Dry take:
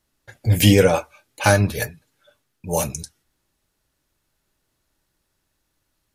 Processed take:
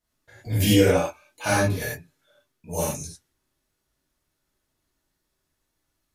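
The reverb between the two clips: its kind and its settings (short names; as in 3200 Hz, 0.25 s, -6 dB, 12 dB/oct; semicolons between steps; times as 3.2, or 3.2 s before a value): non-linear reverb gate 0.13 s flat, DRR -8 dB; gain -12.5 dB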